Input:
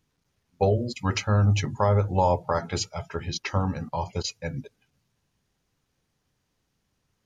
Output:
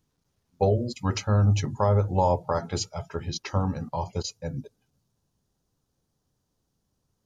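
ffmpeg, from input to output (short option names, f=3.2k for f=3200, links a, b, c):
-af "asetnsamples=n=441:p=0,asendcmd='4.23 equalizer g -13',equalizer=f=2.2k:w=1.1:g=-7"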